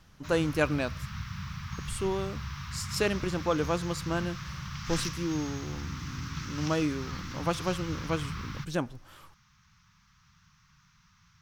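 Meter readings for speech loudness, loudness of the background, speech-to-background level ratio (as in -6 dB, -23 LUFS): -32.5 LUFS, -38.5 LUFS, 6.0 dB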